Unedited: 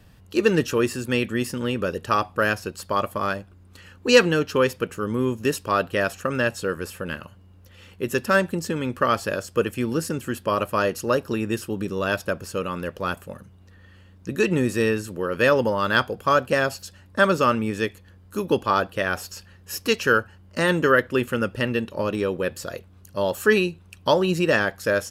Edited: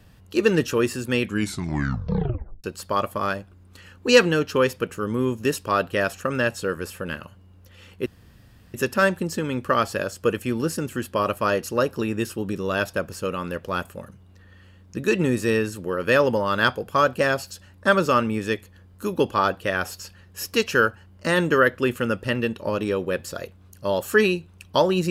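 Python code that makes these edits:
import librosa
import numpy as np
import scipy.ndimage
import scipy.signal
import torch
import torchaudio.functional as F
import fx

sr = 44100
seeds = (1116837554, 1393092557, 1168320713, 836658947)

y = fx.edit(x, sr, fx.tape_stop(start_s=1.22, length_s=1.42),
    fx.insert_room_tone(at_s=8.06, length_s=0.68), tone=tone)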